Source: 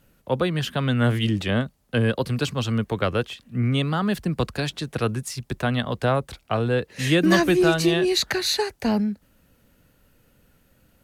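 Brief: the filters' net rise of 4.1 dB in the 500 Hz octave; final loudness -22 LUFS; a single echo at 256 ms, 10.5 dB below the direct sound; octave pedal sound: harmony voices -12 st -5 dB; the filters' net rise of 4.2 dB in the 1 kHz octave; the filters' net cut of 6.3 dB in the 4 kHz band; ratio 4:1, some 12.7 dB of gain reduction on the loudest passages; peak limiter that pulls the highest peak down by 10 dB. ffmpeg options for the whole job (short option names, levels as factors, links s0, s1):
-filter_complex "[0:a]equalizer=f=500:t=o:g=4.5,equalizer=f=1000:t=o:g=4.5,equalizer=f=4000:t=o:g=-8,acompressor=threshold=0.0398:ratio=4,alimiter=limit=0.075:level=0:latency=1,aecho=1:1:256:0.299,asplit=2[s0][s1];[s1]asetrate=22050,aresample=44100,atempo=2,volume=0.562[s2];[s0][s2]amix=inputs=2:normalize=0,volume=2.99"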